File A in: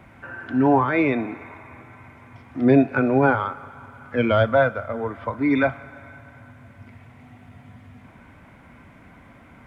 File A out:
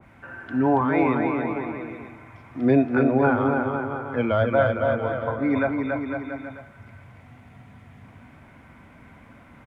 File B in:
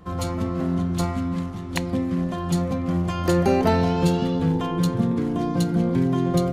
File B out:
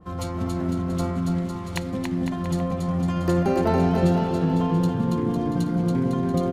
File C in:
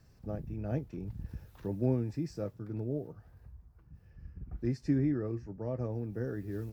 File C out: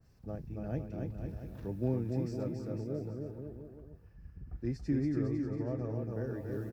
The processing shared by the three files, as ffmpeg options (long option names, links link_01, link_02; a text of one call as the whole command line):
ffmpeg -i in.wav -af "aecho=1:1:280|504|683.2|826.6|941.2:0.631|0.398|0.251|0.158|0.1,adynamicequalizer=threshold=0.0158:dfrequency=1900:dqfactor=0.7:tfrequency=1900:tqfactor=0.7:attack=5:release=100:ratio=0.375:range=3:mode=cutabove:tftype=highshelf,volume=-3dB" out.wav